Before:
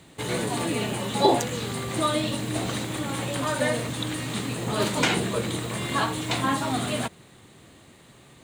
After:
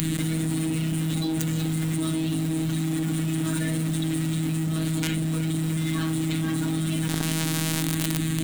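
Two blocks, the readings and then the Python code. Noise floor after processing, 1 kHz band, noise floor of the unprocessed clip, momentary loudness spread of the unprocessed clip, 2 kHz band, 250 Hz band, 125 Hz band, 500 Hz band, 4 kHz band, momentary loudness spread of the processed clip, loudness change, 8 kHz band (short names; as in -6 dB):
-27 dBFS, -12.0 dB, -52 dBFS, 7 LU, -4.5 dB, +4.5 dB, +7.0 dB, -8.0 dB, -3.0 dB, 1 LU, +0.5 dB, +1.5 dB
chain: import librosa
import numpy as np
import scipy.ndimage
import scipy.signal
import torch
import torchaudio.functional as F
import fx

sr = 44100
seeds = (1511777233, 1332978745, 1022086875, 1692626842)

p1 = scipy.signal.sosfilt(scipy.signal.butter(4, 69.0, 'highpass', fs=sr, output='sos'), x)
p2 = p1 + fx.echo_feedback(p1, sr, ms=367, feedback_pct=57, wet_db=-16.5, dry=0)
p3 = fx.robotise(p2, sr, hz=160.0)
p4 = fx.curve_eq(p3, sr, hz=(100.0, 180.0, 270.0, 430.0, 1000.0, 1500.0, 3400.0, 4900.0, 12000.0), db=(0, -2, 7, -17, -16, -6, -3, -6, 4))
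p5 = fx.quant_companded(p4, sr, bits=2)
p6 = p4 + (p5 * 10.0 ** (-3.5 / 20.0))
p7 = fx.low_shelf(p6, sr, hz=350.0, db=8.0)
p8 = fx.env_flatten(p7, sr, amount_pct=100)
y = p8 * 10.0 ** (-9.5 / 20.0)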